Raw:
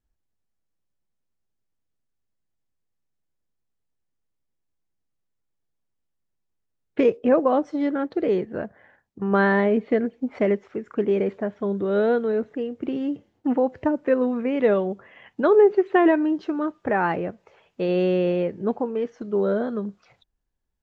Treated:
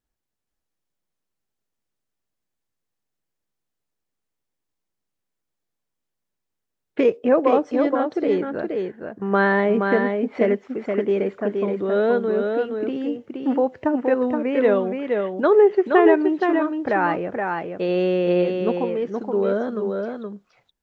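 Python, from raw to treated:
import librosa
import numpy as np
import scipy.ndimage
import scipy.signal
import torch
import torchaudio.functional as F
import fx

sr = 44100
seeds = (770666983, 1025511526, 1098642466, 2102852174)

p1 = fx.low_shelf(x, sr, hz=130.0, db=-11.0)
p2 = p1 + fx.echo_single(p1, sr, ms=472, db=-4.5, dry=0)
y = F.gain(torch.from_numpy(p2), 2.0).numpy()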